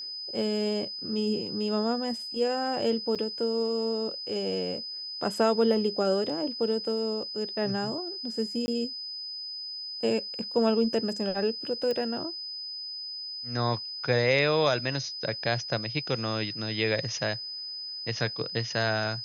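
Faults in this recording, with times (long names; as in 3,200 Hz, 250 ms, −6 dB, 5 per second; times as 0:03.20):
whistle 5,000 Hz −35 dBFS
0:03.15–0:03.16: drop-out 6.5 ms
0:08.66–0:08.68: drop-out 20 ms
0:11.91: click −19 dBFS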